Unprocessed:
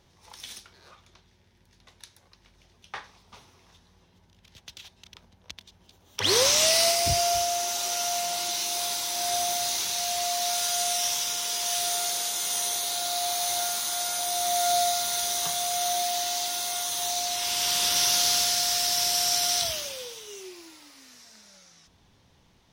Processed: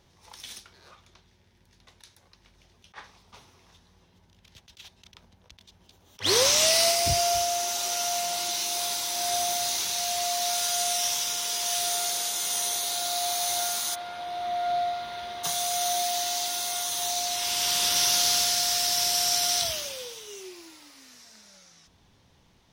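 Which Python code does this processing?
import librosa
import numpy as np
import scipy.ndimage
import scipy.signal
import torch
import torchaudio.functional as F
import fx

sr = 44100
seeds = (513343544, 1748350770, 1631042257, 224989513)

y = fx.air_absorb(x, sr, metres=410.0, at=(13.94, 15.43), fade=0.02)
y = fx.attack_slew(y, sr, db_per_s=350.0)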